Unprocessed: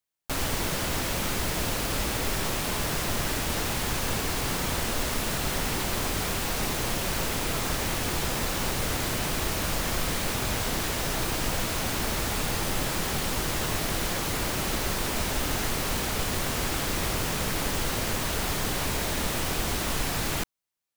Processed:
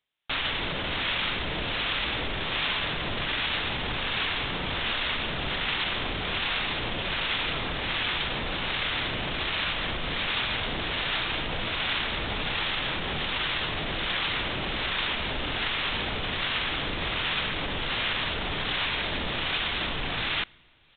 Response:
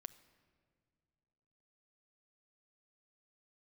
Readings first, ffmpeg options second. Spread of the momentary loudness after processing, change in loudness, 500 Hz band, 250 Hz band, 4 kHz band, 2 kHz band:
3 LU, 0.0 dB, -3.5 dB, -4.5 dB, +4.5 dB, +4.0 dB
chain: -filter_complex "[0:a]alimiter=level_in=0.5dB:limit=-24dB:level=0:latency=1:release=24,volume=-0.5dB,areverse,acompressor=mode=upward:threshold=-43dB:ratio=2.5,areverse,acrossover=split=830[a][b];[a]aeval=exprs='val(0)*(1-0.5/2+0.5/2*cos(2*PI*1.3*n/s))':c=same[c];[b]aeval=exprs='val(0)*(1-0.5/2-0.5/2*cos(2*PI*1.3*n/s))':c=same[d];[c][d]amix=inputs=2:normalize=0,crystalizer=i=8.5:c=0,asplit=2[e][f];[1:a]atrim=start_sample=2205[g];[f][g]afir=irnorm=-1:irlink=0,volume=-3.5dB[h];[e][h]amix=inputs=2:normalize=0,aresample=8000,aresample=44100"

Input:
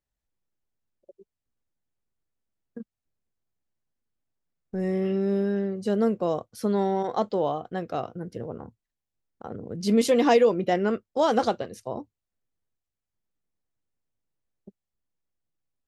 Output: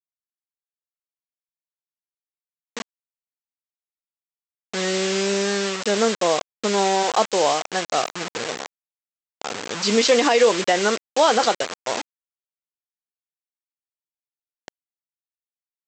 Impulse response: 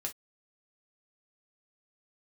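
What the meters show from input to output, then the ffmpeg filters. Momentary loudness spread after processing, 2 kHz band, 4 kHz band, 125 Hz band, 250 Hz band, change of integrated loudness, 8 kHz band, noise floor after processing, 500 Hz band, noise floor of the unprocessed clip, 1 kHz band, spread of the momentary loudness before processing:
17 LU, +12.0 dB, +15.5 dB, -2.5 dB, -1.0 dB, +4.5 dB, +17.0 dB, under -85 dBFS, +4.0 dB, under -85 dBFS, +7.0 dB, 18 LU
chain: -af "lowpass=f=6.1k:w=0.5412,lowpass=f=6.1k:w=1.3066,aresample=16000,acrusher=bits=5:mix=0:aa=0.000001,aresample=44100,highpass=f=1.2k:p=1,alimiter=level_in=19dB:limit=-1dB:release=50:level=0:latency=1,volume=-5.5dB"

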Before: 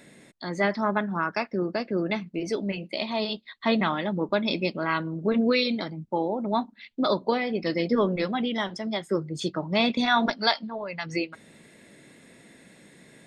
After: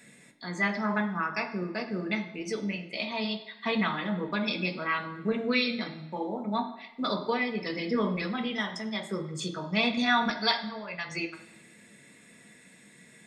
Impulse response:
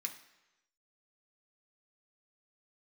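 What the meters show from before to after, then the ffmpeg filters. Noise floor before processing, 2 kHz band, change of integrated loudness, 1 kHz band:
-55 dBFS, -0.5 dB, -3.5 dB, -3.5 dB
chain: -filter_complex "[1:a]atrim=start_sample=2205[a];[0:a][a]afir=irnorm=-1:irlink=0"

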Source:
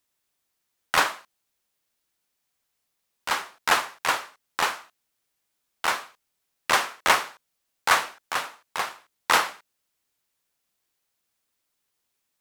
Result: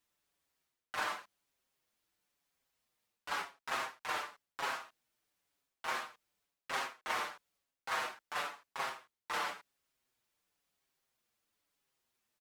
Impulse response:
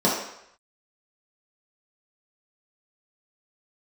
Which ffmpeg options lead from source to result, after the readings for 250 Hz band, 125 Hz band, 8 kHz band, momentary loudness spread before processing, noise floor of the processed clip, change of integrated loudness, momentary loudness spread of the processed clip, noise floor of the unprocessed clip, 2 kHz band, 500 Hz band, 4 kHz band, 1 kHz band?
-13.0 dB, -14.0 dB, -17.0 dB, 13 LU, under -85 dBFS, -14.0 dB, 12 LU, -78 dBFS, -13.5 dB, -12.5 dB, -15.0 dB, -13.5 dB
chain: -filter_complex "[0:a]highshelf=f=4.8k:g=-6,areverse,acompressor=threshold=-34dB:ratio=5,areverse,asplit=2[a][b];[b]adelay=6.2,afreqshift=-0.97[c];[a][c]amix=inputs=2:normalize=1,volume=1.5dB"

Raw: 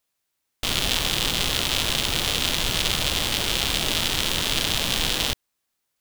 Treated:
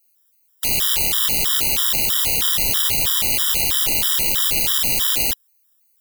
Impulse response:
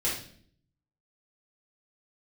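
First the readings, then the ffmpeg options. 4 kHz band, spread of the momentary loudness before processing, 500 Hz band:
0.0 dB, 2 LU, -3.0 dB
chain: -af "aemphasis=mode=production:type=75fm,acontrast=75,afftfilt=real='re*gt(sin(2*PI*3.1*pts/sr)*(1-2*mod(floor(b*sr/1024/980),2)),0)':imag='im*gt(sin(2*PI*3.1*pts/sr)*(1-2*mod(floor(b*sr/1024/980),2)),0)':win_size=1024:overlap=0.75,volume=-5dB"

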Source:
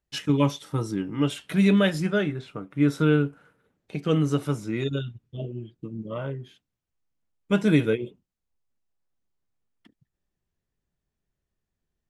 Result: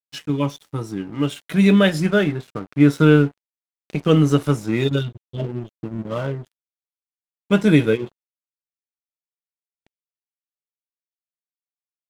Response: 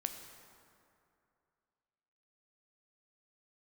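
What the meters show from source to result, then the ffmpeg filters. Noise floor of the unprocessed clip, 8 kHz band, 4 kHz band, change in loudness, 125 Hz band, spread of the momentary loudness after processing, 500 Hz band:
-84 dBFS, +4.0 dB, +5.0 dB, +6.0 dB, +6.0 dB, 16 LU, +6.0 dB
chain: -af "aeval=exprs='sgn(val(0))*max(abs(val(0))-0.00562,0)':c=same,dynaudnorm=f=140:g=21:m=11.5dB"

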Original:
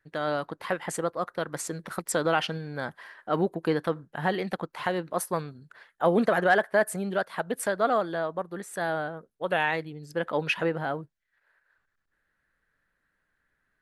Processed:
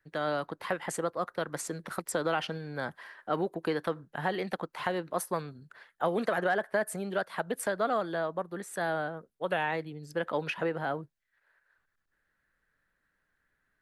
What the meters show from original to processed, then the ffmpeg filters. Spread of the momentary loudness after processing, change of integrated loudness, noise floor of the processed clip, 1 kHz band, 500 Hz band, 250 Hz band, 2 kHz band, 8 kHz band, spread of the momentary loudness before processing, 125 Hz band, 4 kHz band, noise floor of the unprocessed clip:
8 LU, -4.5 dB, -79 dBFS, -4.0 dB, -4.0 dB, -5.0 dB, -4.5 dB, -4.0 dB, 12 LU, -5.0 dB, -4.5 dB, -78 dBFS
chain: -filter_complex "[0:a]acrossover=split=290|1300[a][b][c];[a]acompressor=threshold=-38dB:ratio=4[d];[b]acompressor=threshold=-26dB:ratio=4[e];[c]acompressor=threshold=-33dB:ratio=4[f];[d][e][f]amix=inputs=3:normalize=0,volume=-1.5dB"

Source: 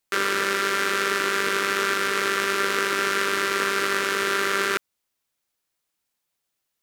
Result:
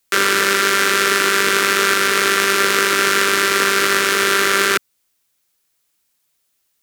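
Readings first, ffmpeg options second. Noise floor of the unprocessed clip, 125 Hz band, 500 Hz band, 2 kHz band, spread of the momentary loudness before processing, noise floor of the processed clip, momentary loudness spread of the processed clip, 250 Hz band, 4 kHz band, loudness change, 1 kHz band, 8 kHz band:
-80 dBFS, +7.5 dB, +7.0 dB, +8.0 dB, 0 LU, -68 dBFS, 0 LU, +7.0 dB, +9.5 dB, +8.0 dB, +7.0 dB, +11.5 dB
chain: -filter_complex "[0:a]highshelf=f=4.8k:g=5.5,acrossover=split=180|730|2900[a][b][c][d];[b]acrusher=samples=23:mix=1:aa=0.000001[e];[a][e][c][d]amix=inputs=4:normalize=0,volume=7.5dB"

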